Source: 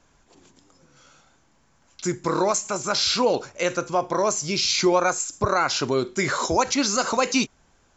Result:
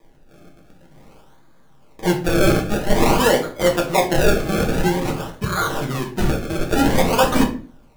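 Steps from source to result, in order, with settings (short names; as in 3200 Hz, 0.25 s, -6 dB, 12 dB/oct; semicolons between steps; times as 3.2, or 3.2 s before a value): 4.63–6.69 EQ curve 170 Hz 0 dB, 390 Hz -7 dB, 750 Hz -23 dB, 1800 Hz +4 dB, 2700 Hz -2 dB, 4500 Hz -7 dB; decimation with a swept rate 31×, swing 100% 0.5 Hz; shoebox room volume 30 m³, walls mixed, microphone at 0.51 m; gain +2.5 dB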